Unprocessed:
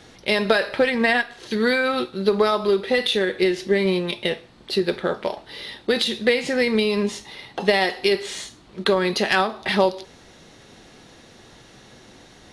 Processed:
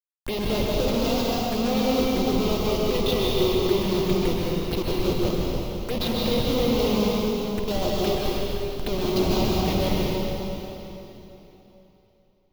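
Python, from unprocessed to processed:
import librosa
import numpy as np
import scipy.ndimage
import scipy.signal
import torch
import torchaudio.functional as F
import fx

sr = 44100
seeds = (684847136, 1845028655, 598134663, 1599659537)

y = fx.schmitt(x, sr, flips_db=-21.5)
y = fx.env_phaser(y, sr, low_hz=380.0, high_hz=1800.0, full_db=-21.5)
y = fx.rev_plate(y, sr, seeds[0], rt60_s=3.4, hf_ratio=0.9, predelay_ms=115, drr_db=-4.5)
y = y * 10.0 ** (-2.5 / 20.0)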